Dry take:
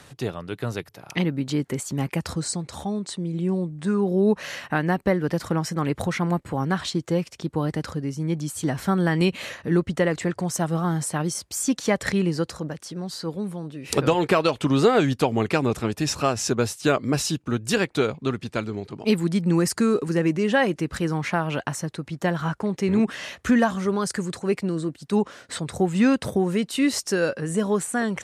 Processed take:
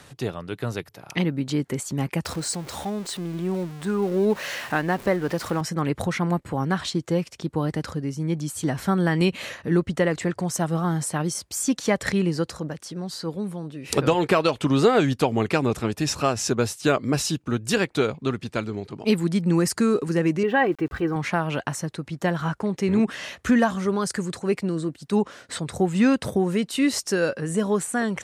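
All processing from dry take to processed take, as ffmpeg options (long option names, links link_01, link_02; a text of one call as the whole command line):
ffmpeg -i in.wav -filter_complex "[0:a]asettb=1/sr,asplit=3[link_01][link_02][link_03];[link_01]atrim=end=2.254[link_04];[link_02]atrim=start=2.25:end=5.61,asetpts=PTS-STARTPTS,afade=type=in:duration=0.004:curve=qsin,afade=type=out:start_time=3.356:duration=0.004:curve=qsin,aeval=exprs='val(0)+0.5*0.02*sgn(val(0))':channel_layout=same,bass=frequency=250:gain=-6,treble=frequency=4000:gain=-1[link_05];[link_03]atrim=start=5.606[link_06];[link_04][link_05]acrossfade=duration=0.004:curve1=hsin:curve2=qsin[link_07];[link_07][link_06]acrossfade=duration=0.004:curve1=qsin:curve2=hsin,asettb=1/sr,asplit=3[link_08][link_09][link_10];[link_08]atrim=end=20.434[link_11];[link_09]atrim=start=20.43:end=21.16,asetpts=PTS-STARTPTS,afade=type=in:duration=0.004:curve=qsin,afade=type=out:start_time=0.726:duration=0.004:curve=qsin,lowpass=2200,aecho=1:1:2.6:0.54,atrim=end_sample=32193,aeval=exprs='val(0)*gte(abs(val(0)),0.00422)':channel_layout=same[link_12];[link_10]atrim=start=21.156[link_13];[link_11][link_12]acrossfade=duration=0.004:curve1=hsin:curve2=qsin[link_14];[link_14][link_13]acrossfade=duration=0.004:curve1=qsin:curve2=hsin" out.wav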